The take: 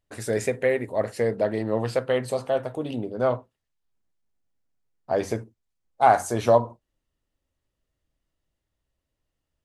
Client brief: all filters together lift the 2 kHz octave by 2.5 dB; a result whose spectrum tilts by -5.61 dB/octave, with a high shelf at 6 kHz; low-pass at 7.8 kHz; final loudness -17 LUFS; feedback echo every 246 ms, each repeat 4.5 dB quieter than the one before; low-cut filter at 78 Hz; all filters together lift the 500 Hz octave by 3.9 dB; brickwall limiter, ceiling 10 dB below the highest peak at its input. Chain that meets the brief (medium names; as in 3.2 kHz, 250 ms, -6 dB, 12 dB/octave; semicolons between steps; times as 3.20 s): high-pass 78 Hz; low-pass 7.8 kHz; peaking EQ 500 Hz +4.5 dB; peaking EQ 2 kHz +3.5 dB; treble shelf 6 kHz -6.5 dB; peak limiter -13 dBFS; feedback delay 246 ms, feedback 60%, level -4.5 dB; trim +7.5 dB